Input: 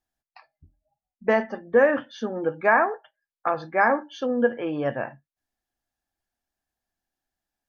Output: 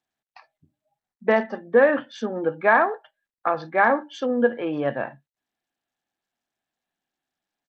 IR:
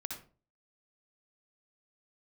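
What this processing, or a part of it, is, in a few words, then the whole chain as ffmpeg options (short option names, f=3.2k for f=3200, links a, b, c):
Bluetooth headset: -af "highpass=f=130:w=0.5412,highpass=f=130:w=1.3066,aresample=16000,aresample=44100,volume=1.5dB" -ar 32000 -c:a sbc -b:a 64k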